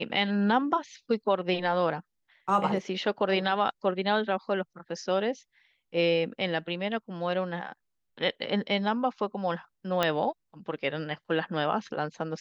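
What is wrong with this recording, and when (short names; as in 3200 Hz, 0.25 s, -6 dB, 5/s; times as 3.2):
10.03 pop -11 dBFS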